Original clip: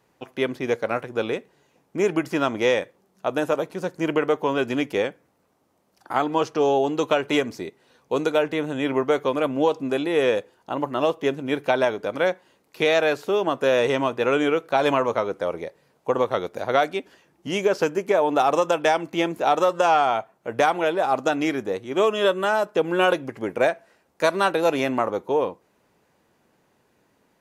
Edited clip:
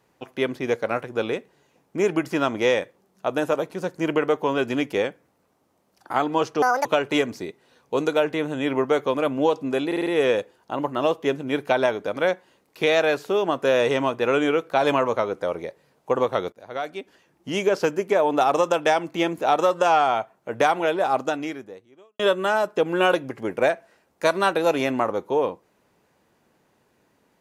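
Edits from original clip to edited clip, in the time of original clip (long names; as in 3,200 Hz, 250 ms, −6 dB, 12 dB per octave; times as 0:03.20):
0:06.62–0:07.04: play speed 180%
0:10.05: stutter 0.05 s, 5 plays
0:16.51–0:17.52: fade in, from −22 dB
0:21.12–0:22.18: fade out quadratic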